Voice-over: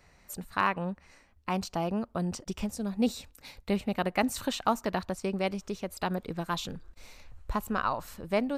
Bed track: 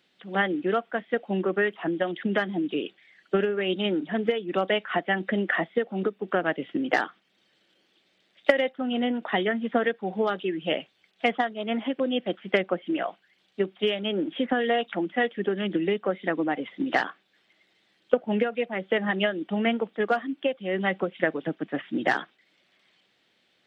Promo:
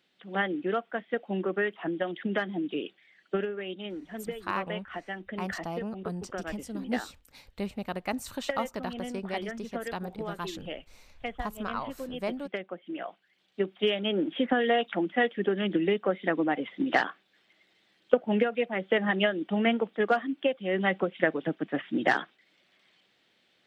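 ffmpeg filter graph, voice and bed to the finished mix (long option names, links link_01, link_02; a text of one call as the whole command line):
ffmpeg -i stem1.wav -i stem2.wav -filter_complex "[0:a]adelay=3900,volume=-5dB[link_01];[1:a]volume=7.5dB,afade=type=out:start_time=3.21:duration=0.54:silence=0.398107,afade=type=in:start_time=12.79:duration=1.17:silence=0.266073[link_02];[link_01][link_02]amix=inputs=2:normalize=0" out.wav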